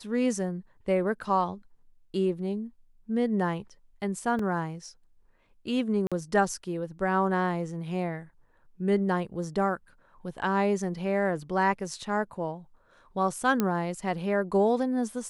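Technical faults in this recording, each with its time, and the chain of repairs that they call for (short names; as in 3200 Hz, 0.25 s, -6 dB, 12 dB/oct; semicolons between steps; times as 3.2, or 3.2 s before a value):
4.39 gap 3.4 ms
6.07–6.12 gap 46 ms
13.6 pop -12 dBFS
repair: de-click; interpolate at 4.39, 3.4 ms; interpolate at 6.07, 46 ms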